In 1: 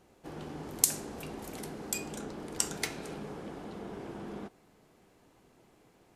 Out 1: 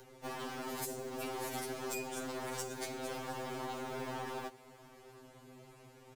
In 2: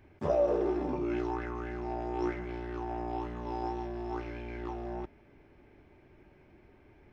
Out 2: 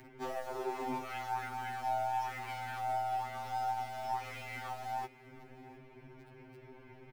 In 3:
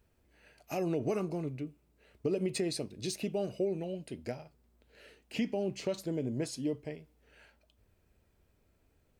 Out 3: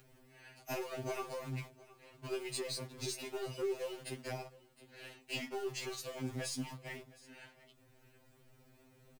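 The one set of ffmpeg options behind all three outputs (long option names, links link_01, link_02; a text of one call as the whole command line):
ffmpeg -i in.wav -filter_complex "[0:a]acrossover=split=120|710[link_01][link_02][link_03];[link_01]acompressor=threshold=-57dB:ratio=4[link_04];[link_02]acompressor=threshold=-43dB:ratio=4[link_05];[link_03]acompressor=threshold=-46dB:ratio=4[link_06];[link_04][link_05][link_06]amix=inputs=3:normalize=0,asplit=2[link_07][link_08];[link_08]acrusher=bits=7:mix=0:aa=0.000001,volume=-9dB[link_09];[link_07][link_09]amix=inputs=2:normalize=0,asoftclip=type=tanh:threshold=-33.5dB,acrossover=split=480|4100[link_10][link_11][link_12];[link_10]alimiter=level_in=19.5dB:limit=-24dB:level=0:latency=1:release=466,volume=-19.5dB[link_13];[link_13][link_11][link_12]amix=inputs=3:normalize=0,aeval=exprs='0.0398*(cos(1*acos(clip(val(0)/0.0398,-1,1)))-cos(1*PI/2))+0.000708*(cos(4*acos(clip(val(0)/0.0398,-1,1)))-cos(4*PI/2))+0.000447*(cos(8*acos(clip(val(0)/0.0398,-1,1)))-cos(8*PI/2))':channel_layout=same,aecho=1:1:713:0.0944,acompressor=mode=upward:threshold=-60dB:ratio=2.5,afftfilt=real='re*2.45*eq(mod(b,6),0)':imag='im*2.45*eq(mod(b,6),0)':win_size=2048:overlap=0.75,volume=7.5dB" out.wav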